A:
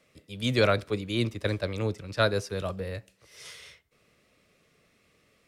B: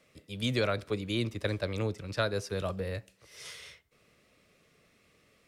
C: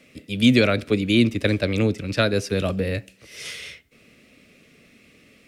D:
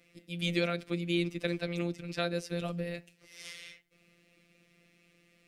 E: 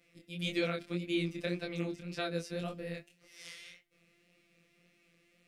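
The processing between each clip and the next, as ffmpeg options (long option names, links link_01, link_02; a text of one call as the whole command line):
ffmpeg -i in.wav -af "acompressor=threshold=-28dB:ratio=2.5" out.wav
ffmpeg -i in.wav -af "equalizer=frequency=250:width_type=o:width=0.67:gain=10,equalizer=frequency=1000:width_type=o:width=0.67:gain=-7,equalizer=frequency=2500:width_type=o:width=0.67:gain=6,volume=9dB" out.wav
ffmpeg -i in.wav -af "afftfilt=real='hypot(re,im)*cos(PI*b)':imag='0':win_size=1024:overlap=0.75,volume=-8dB" out.wav
ffmpeg -i in.wav -af "flanger=delay=20:depth=6.2:speed=1.8" out.wav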